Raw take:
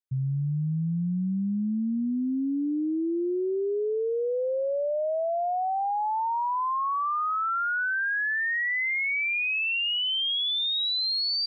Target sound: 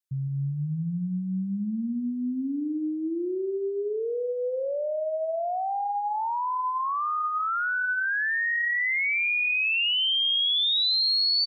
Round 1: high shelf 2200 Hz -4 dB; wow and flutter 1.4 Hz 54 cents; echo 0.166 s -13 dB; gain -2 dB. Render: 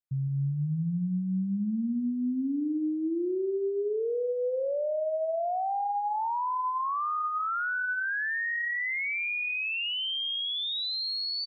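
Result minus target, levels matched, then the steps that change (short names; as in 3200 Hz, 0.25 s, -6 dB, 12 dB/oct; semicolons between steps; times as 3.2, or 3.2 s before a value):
4000 Hz band -4.0 dB
change: high shelf 2200 Hz +7 dB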